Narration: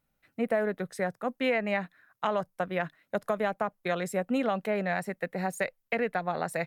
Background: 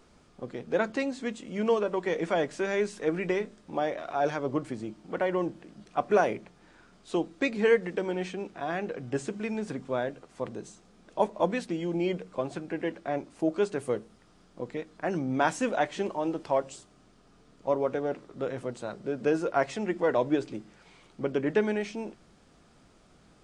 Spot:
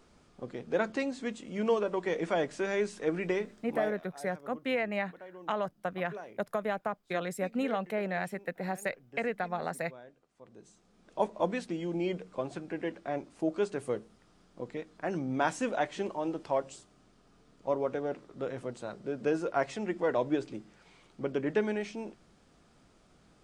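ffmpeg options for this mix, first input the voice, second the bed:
-filter_complex "[0:a]adelay=3250,volume=0.668[s0];[1:a]volume=5.31,afade=t=out:st=3.64:d=0.43:silence=0.125893,afade=t=in:st=10.45:d=0.78:silence=0.141254[s1];[s0][s1]amix=inputs=2:normalize=0"

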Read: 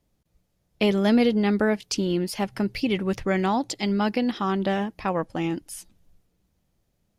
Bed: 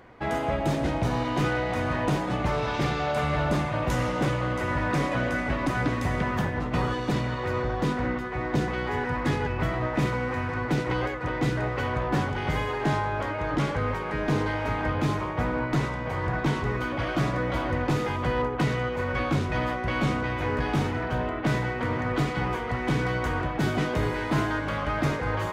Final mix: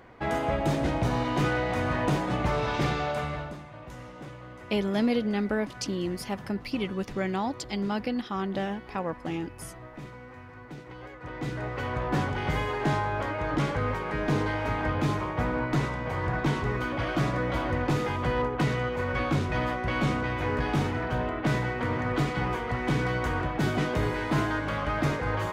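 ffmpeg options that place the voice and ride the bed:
-filter_complex "[0:a]adelay=3900,volume=0.501[s0];[1:a]volume=5.96,afade=t=out:st=2.92:d=0.64:silence=0.149624,afade=t=in:st=10.99:d=1.26:silence=0.158489[s1];[s0][s1]amix=inputs=2:normalize=0"

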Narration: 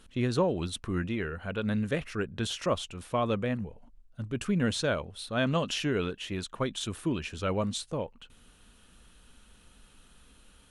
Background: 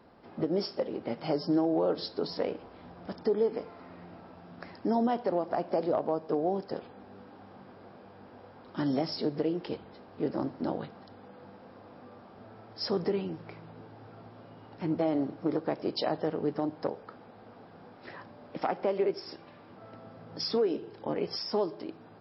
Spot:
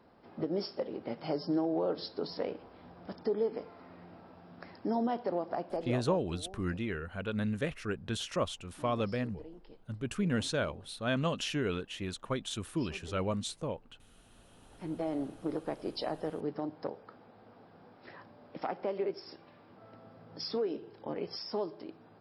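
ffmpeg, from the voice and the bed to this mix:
-filter_complex "[0:a]adelay=5700,volume=0.668[s0];[1:a]volume=3.35,afade=t=out:st=5.48:d=0.88:silence=0.158489,afade=t=in:st=14.14:d=1.06:silence=0.188365[s1];[s0][s1]amix=inputs=2:normalize=0"

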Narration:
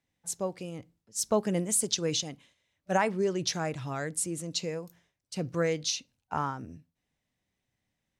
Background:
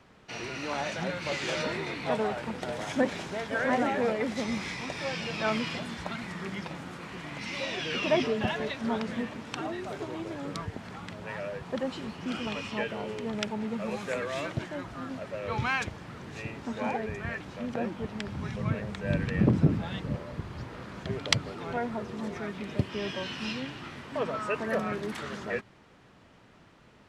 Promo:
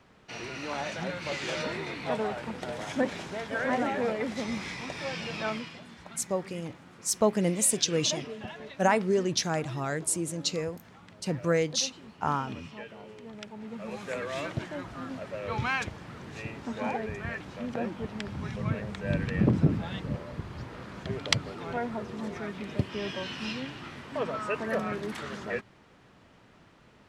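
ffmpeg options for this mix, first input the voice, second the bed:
-filter_complex "[0:a]adelay=5900,volume=1.33[s0];[1:a]volume=2.82,afade=t=out:st=5.37:d=0.35:silence=0.334965,afade=t=in:st=13.49:d=0.9:silence=0.298538[s1];[s0][s1]amix=inputs=2:normalize=0"

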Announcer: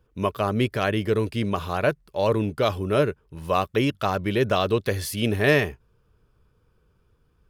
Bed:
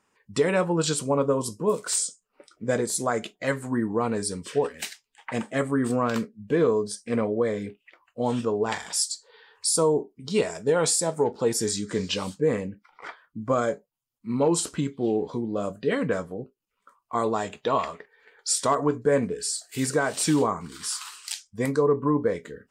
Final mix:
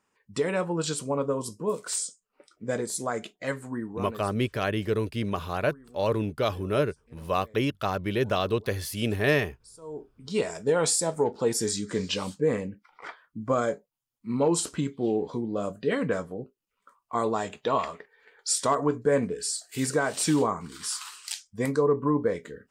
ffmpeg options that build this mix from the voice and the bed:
-filter_complex "[0:a]adelay=3800,volume=0.631[s0];[1:a]volume=12.6,afade=t=out:st=3.49:d=0.95:silence=0.0668344,afade=t=in:st=9.81:d=0.73:silence=0.0473151[s1];[s0][s1]amix=inputs=2:normalize=0"

